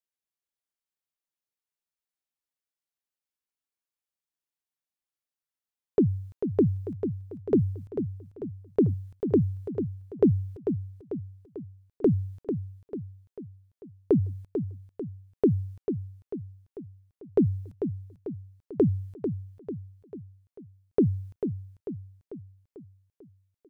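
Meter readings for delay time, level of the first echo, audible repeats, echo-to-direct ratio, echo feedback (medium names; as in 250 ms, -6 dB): 444 ms, -8.0 dB, 5, -6.5 dB, 51%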